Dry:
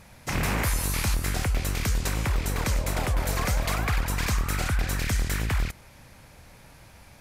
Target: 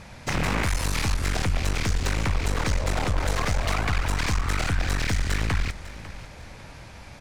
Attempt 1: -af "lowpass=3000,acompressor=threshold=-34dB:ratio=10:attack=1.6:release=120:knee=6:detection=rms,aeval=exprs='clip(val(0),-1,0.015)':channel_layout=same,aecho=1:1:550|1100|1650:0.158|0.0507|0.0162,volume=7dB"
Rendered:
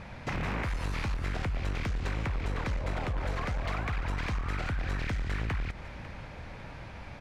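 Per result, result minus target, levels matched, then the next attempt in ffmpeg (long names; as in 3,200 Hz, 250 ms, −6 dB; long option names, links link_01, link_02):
8,000 Hz band −11.0 dB; downward compressor: peak gain reduction +10 dB
-af "lowpass=6800,acompressor=threshold=-34dB:ratio=10:attack=1.6:release=120:knee=6:detection=rms,aeval=exprs='clip(val(0),-1,0.015)':channel_layout=same,aecho=1:1:550|1100|1650:0.158|0.0507|0.0162,volume=7dB"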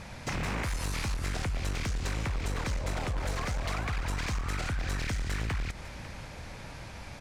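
downward compressor: peak gain reduction +10 dB
-af "lowpass=6800,acompressor=threshold=-22.5dB:ratio=10:attack=1.6:release=120:knee=6:detection=rms,aeval=exprs='clip(val(0),-1,0.015)':channel_layout=same,aecho=1:1:550|1100|1650:0.158|0.0507|0.0162,volume=7dB"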